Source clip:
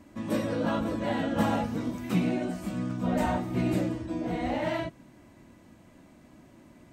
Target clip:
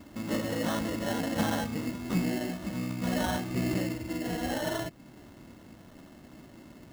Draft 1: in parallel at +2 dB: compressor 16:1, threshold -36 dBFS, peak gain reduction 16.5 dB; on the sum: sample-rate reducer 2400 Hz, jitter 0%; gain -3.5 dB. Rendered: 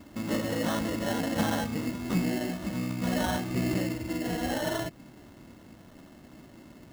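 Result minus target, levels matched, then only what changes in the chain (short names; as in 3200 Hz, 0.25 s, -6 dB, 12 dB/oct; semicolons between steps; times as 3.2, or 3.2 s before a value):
compressor: peak gain reduction -7 dB
change: compressor 16:1, threshold -43.5 dBFS, peak gain reduction 23.5 dB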